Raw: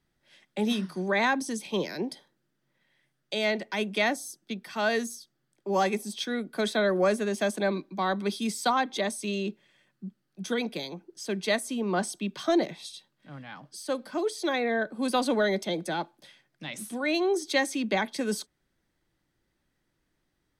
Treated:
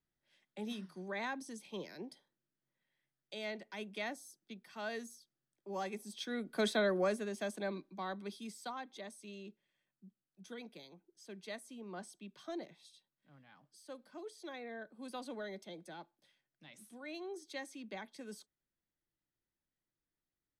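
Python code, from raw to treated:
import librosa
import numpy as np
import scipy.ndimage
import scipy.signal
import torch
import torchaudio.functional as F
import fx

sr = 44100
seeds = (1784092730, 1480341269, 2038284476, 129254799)

y = fx.gain(x, sr, db=fx.line((5.89, -15.0), (6.64, -4.5), (7.33, -12.0), (7.86, -12.0), (8.76, -19.0)))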